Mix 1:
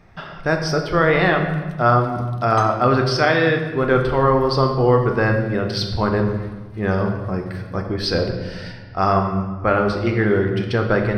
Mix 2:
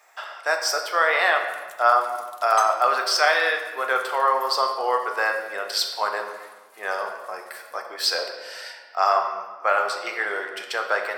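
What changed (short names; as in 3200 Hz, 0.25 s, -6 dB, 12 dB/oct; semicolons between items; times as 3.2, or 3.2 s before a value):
speech: add HPF 640 Hz 24 dB/oct; master: remove polynomial smoothing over 15 samples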